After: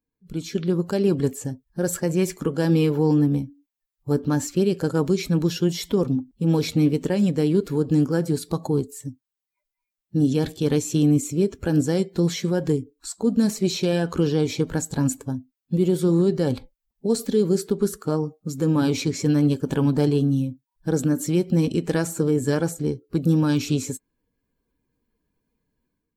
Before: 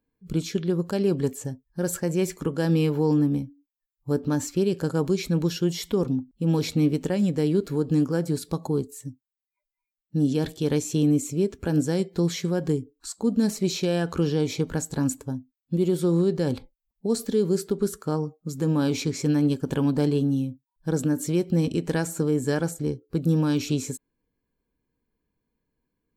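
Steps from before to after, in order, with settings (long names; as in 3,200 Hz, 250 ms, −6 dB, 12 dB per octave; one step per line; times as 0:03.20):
spectral magnitudes quantised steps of 15 dB
automatic gain control gain up to 11 dB
level −7 dB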